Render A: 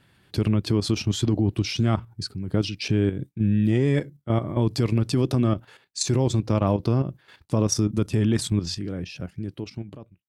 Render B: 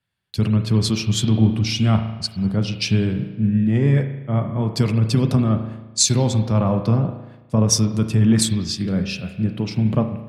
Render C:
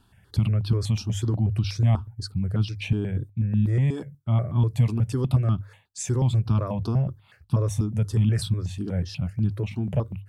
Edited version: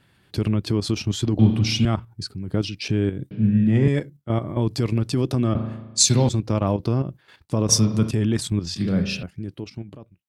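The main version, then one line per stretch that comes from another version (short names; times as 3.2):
A
1.39–1.85 from B
3.31–3.88 from B
5.55–6.29 from B
7.69–8.11 from B
8.76–9.23 from B
not used: C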